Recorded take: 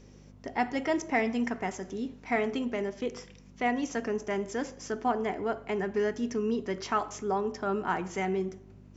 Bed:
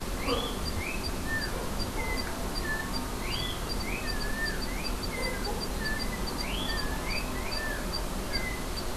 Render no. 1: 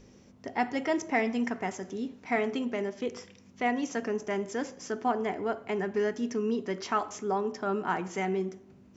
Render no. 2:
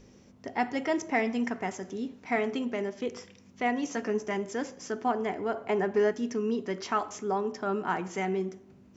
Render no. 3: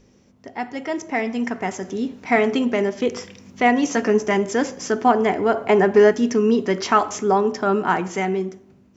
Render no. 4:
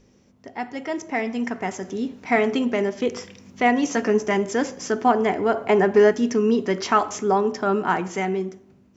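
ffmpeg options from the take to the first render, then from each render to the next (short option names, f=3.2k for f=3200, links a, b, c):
-af "bandreject=f=50:t=h:w=4,bandreject=f=100:t=h:w=4,bandreject=f=150:t=h:w=4"
-filter_complex "[0:a]asettb=1/sr,asplit=3[a][b][c];[a]atrim=end=3.844[d];[b]atrim=start=3.84:end=4.37,asetpts=PTS-STARTPTS,afade=t=in:d=0.004:c=qsin,afade=t=out:st=0.526:d=0.004:c=qsin,asplit=2[e][f];[f]adelay=14,volume=-7dB[g];[e][g]amix=inputs=2:normalize=0,atrim=end_sample=23373[h];[c]atrim=start=4.366[i];[d][h]acrossfade=d=0.004:c1=hsin:c2=qsin[j];[j][i]acrossfade=d=0.004:c1=qsin:c2=hsin,asettb=1/sr,asplit=3[k][l][m];[k]atrim=end=5.544[n];[l]atrim=start=5.54:end=6.12,asetpts=PTS-STARTPTS,afade=t=in:d=0.004:c=qsin,afade=t=out:st=0.576:d=0.004:c=qsin,equalizer=f=700:t=o:w=1.9:g=6[o];[m]atrim=start=6.116[p];[n][o]acrossfade=d=0.004:c1=hsin:c2=qsin[q];[q][p]acrossfade=d=0.004:c1=qsin:c2=hsin"
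-af "dynaudnorm=f=660:g=5:m=13dB"
-af "volume=-2dB"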